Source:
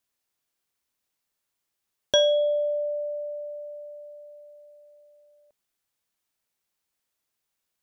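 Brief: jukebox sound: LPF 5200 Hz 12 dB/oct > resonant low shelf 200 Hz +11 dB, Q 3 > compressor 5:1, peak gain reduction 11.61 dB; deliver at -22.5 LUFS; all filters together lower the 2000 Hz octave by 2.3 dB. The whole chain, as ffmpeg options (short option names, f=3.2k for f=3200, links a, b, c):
-af "lowpass=5.2k,lowshelf=f=200:t=q:w=3:g=11,equalizer=f=2k:t=o:g=-3,acompressor=threshold=-30dB:ratio=5,volume=12dB"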